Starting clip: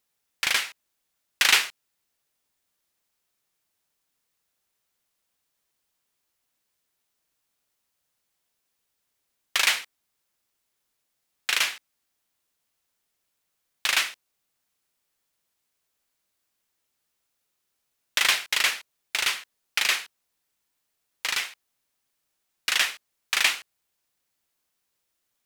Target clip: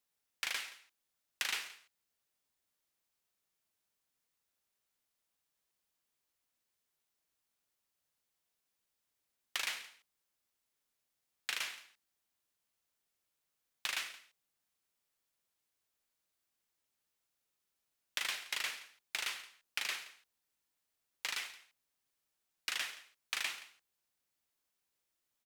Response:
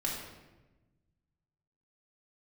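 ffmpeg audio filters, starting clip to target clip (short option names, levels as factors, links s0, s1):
-filter_complex "[0:a]acrossover=split=330|1600[s0][s1][s2];[s0]acompressor=threshold=0.00112:ratio=4[s3];[s1]acompressor=threshold=0.0112:ratio=4[s4];[s2]acompressor=threshold=0.0355:ratio=4[s5];[s3][s4][s5]amix=inputs=3:normalize=0,aecho=1:1:174:0.133,volume=0.422"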